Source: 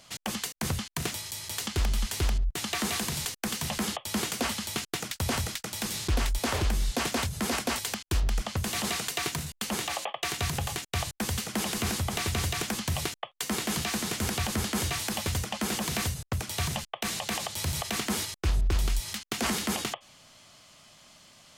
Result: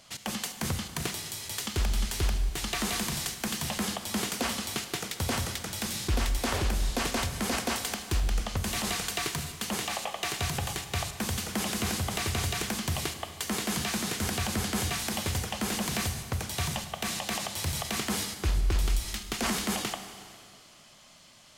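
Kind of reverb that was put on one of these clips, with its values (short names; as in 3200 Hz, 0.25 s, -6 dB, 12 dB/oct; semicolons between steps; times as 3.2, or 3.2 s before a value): Schroeder reverb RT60 2.2 s, combs from 31 ms, DRR 8 dB; gain -1 dB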